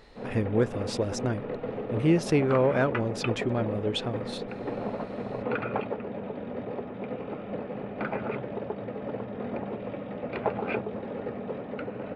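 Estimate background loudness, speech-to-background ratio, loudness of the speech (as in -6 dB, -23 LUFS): -34.5 LUFS, 6.5 dB, -28.0 LUFS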